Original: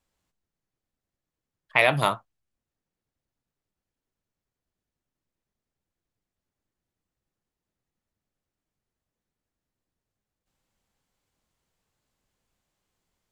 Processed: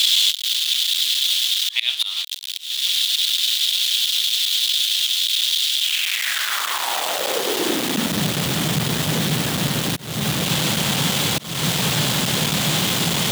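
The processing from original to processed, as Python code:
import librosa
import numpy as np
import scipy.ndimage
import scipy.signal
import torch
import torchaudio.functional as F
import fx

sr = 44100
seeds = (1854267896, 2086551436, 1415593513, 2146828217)

y = x + 0.5 * 10.0 ** (-21.5 / 20.0) * np.sign(x)
y = fx.filter_sweep_highpass(y, sr, from_hz=3500.0, to_hz=150.0, start_s=5.75, end_s=8.31, q=3.3)
y = fx.auto_swell(y, sr, attack_ms=296.0)
y = fx.peak_eq(y, sr, hz=3400.0, db=9.0, octaves=0.67)
y = F.gain(torch.from_numpy(y), 5.5).numpy()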